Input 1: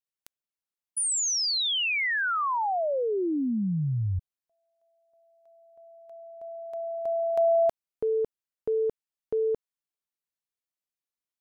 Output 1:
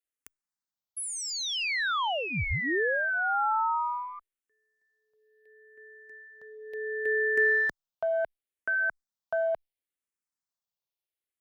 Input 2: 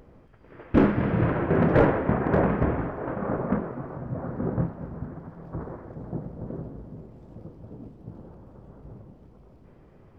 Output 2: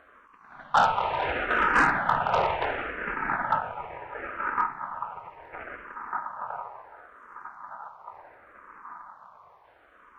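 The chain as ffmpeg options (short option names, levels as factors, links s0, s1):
-filter_complex "[0:a]aeval=exprs='val(0)*sin(2*PI*1100*n/s)':c=same,aeval=exprs='0.335*(cos(1*acos(clip(val(0)/0.335,-1,1)))-cos(1*PI/2))+0.0237*(cos(2*acos(clip(val(0)/0.335,-1,1)))-cos(2*PI/2))+0.0119*(cos(4*acos(clip(val(0)/0.335,-1,1)))-cos(4*PI/2))+0.0531*(cos(5*acos(clip(val(0)/0.335,-1,1)))-cos(5*PI/2))+0.0188*(cos(7*acos(clip(val(0)/0.335,-1,1)))-cos(7*PI/2))':c=same,asplit=2[s0][s1];[s1]afreqshift=-0.71[s2];[s0][s2]amix=inputs=2:normalize=1,volume=1.19"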